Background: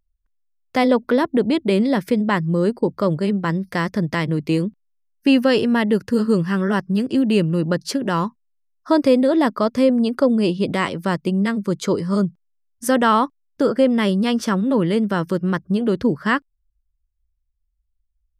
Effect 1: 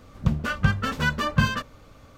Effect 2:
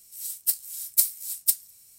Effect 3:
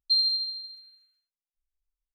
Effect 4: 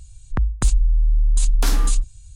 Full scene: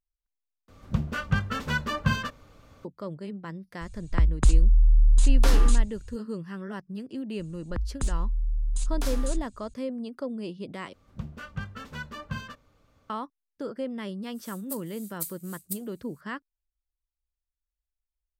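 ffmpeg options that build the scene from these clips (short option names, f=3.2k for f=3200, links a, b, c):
-filter_complex "[1:a]asplit=2[a][b];[4:a]asplit=2[c][d];[0:a]volume=-17dB[e];[c]highshelf=f=4.6k:g=-8.5[f];[2:a]bandreject=f=5.4k:w=7[g];[e]asplit=3[h][i][j];[h]atrim=end=0.684[k];[a]atrim=end=2.17,asetpts=PTS-STARTPTS,volume=-4dB[l];[i]atrim=start=2.846:end=10.934[m];[b]atrim=end=2.17,asetpts=PTS-STARTPTS,volume=-14dB[n];[j]atrim=start=13.096[o];[f]atrim=end=2.35,asetpts=PTS-STARTPTS,volume=-1dB,afade=t=in:d=0.004:c=hsin,afade=t=out:st=2.346:d=0.004:c=hsin,adelay=168021S[p];[d]atrim=end=2.35,asetpts=PTS-STARTPTS,volume=-10.5dB,afade=t=in:d=0.004:c=hsin,afade=t=out:st=2.346:d=0.004:c=hsin,adelay=7390[q];[g]atrim=end=1.98,asetpts=PTS-STARTPTS,volume=-13.5dB,afade=t=in:d=0.004:c=hsin,afade=t=out:st=1.976:d=0.004:c=hsin,adelay=14230[r];[k][l]acrossfade=d=0.004:c1=hsin:c2=hsin[s];[s][m]acrossfade=d=0.004:c1=hsin:c2=hsin[t];[t][n]acrossfade=d=0.004:c1=hsin:c2=hsin[u];[u][o]acrossfade=d=0.004:c1=hsin:c2=hsin[v];[v][p][q][r]amix=inputs=4:normalize=0"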